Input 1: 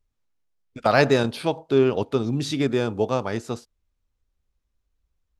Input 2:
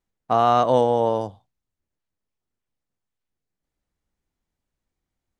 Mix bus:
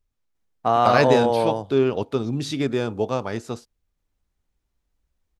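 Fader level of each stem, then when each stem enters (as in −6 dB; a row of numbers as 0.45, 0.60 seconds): −1.0, −0.5 decibels; 0.00, 0.35 seconds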